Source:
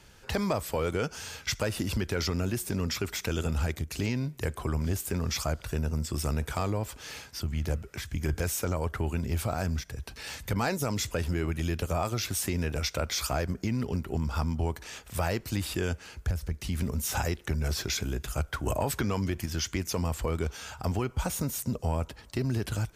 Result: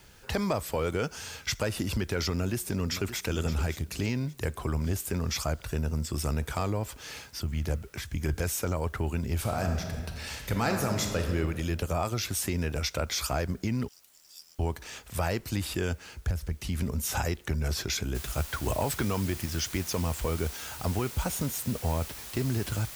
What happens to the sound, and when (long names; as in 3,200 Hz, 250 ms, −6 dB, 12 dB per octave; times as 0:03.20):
0:02.34–0:03.19: delay throw 570 ms, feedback 25%, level −12 dB
0:09.35–0:11.34: thrown reverb, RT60 1.7 s, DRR 3.5 dB
0:13.88–0:14.59: inverse Chebyshev high-pass filter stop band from 780 Hz, stop band 80 dB
0:18.15: noise floor change −64 dB −43 dB